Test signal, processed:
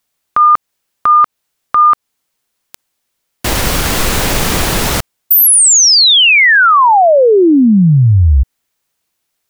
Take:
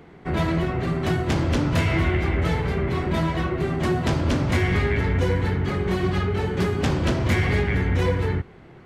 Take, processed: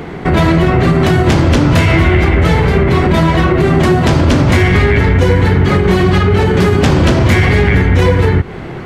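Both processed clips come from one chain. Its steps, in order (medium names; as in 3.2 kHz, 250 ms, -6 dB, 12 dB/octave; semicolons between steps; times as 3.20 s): compression, threshold -27 dBFS; loudness maximiser +22.5 dB; trim -1 dB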